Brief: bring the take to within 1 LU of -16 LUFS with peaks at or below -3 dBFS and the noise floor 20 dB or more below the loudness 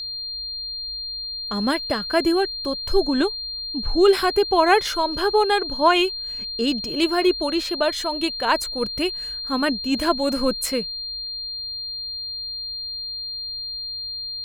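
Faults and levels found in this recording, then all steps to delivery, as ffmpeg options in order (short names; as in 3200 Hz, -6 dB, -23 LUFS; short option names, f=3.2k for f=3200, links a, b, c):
steady tone 4200 Hz; tone level -28 dBFS; loudness -22.5 LUFS; peak -4.5 dBFS; loudness target -16.0 LUFS
-> -af "bandreject=f=4.2k:w=30"
-af "volume=6.5dB,alimiter=limit=-3dB:level=0:latency=1"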